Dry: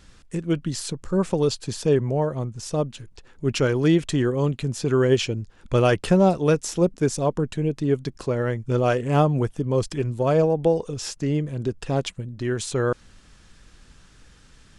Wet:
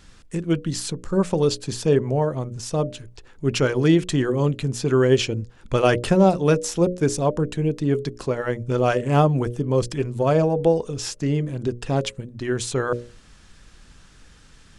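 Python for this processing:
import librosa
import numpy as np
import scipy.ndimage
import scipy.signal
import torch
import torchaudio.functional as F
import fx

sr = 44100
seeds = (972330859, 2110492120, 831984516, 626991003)

y = fx.hum_notches(x, sr, base_hz=60, count=10)
y = y * 10.0 ** (2.0 / 20.0)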